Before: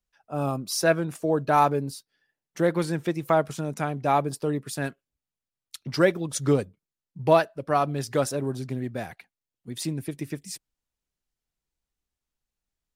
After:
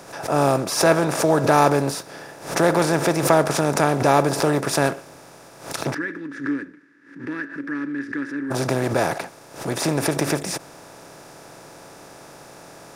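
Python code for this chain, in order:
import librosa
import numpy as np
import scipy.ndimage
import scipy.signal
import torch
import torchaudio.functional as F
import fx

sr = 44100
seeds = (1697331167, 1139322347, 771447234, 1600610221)

y = fx.bin_compress(x, sr, power=0.4)
y = fx.double_bandpass(y, sr, hz=700.0, octaves=2.6, at=(5.93, 8.5), fade=0.02)
y = fx.pre_swell(y, sr, db_per_s=120.0)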